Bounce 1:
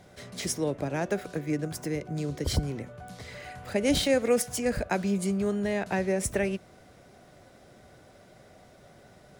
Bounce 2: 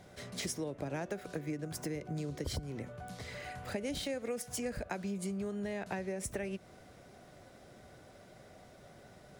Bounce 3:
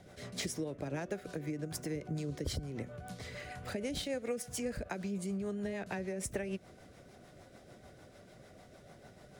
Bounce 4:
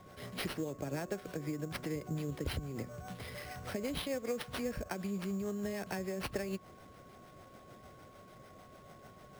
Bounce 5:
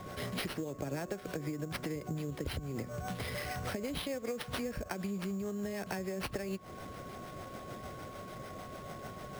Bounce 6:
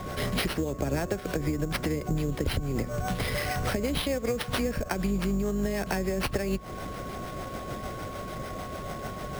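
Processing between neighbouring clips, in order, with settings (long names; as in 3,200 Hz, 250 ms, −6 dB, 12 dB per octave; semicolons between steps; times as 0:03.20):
downward compressor 12 to 1, threshold −32 dBFS, peak gain reduction 13.5 dB; level −2 dB
rotating-speaker cabinet horn 6.7 Hz; level +2 dB
sample-rate reduction 7,100 Hz, jitter 0%; steady tone 1,100 Hz −59 dBFS
downward compressor, threshold −45 dBFS, peak gain reduction 13.5 dB; level +10 dB
sub-octave generator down 2 octaves, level −4 dB; level +8.5 dB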